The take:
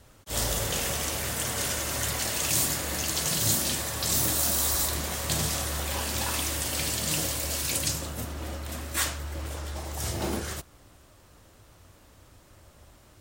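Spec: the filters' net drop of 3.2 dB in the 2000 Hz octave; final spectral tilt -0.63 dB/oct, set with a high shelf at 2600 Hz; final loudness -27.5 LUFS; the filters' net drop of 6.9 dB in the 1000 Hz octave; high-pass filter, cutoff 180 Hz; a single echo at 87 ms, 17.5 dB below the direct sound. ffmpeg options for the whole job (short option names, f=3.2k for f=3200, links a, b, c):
-af "highpass=180,equalizer=f=1k:t=o:g=-9,equalizer=f=2k:t=o:g=-3.5,highshelf=f=2.6k:g=4,aecho=1:1:87:0.133,volume=-3dB"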